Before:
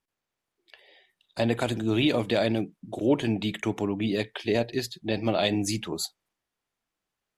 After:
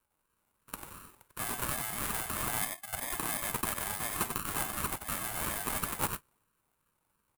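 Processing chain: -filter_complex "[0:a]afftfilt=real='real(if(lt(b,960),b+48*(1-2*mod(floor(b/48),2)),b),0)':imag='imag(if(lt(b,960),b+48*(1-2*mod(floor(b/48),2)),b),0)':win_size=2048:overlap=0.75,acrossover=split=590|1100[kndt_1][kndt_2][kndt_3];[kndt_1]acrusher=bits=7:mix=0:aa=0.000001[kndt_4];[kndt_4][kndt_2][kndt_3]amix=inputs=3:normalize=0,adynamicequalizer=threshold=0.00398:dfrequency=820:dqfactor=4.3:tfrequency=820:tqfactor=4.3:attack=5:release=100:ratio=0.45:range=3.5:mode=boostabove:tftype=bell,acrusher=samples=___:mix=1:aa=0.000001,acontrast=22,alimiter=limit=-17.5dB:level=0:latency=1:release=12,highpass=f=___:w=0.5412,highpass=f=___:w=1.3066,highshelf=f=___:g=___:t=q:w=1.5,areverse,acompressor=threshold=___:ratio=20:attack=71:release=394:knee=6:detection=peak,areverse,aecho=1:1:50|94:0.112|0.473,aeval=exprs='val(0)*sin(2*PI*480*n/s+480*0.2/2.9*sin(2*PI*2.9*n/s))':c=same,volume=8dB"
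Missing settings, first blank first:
31, 430, 430, 7500, 11, -41dB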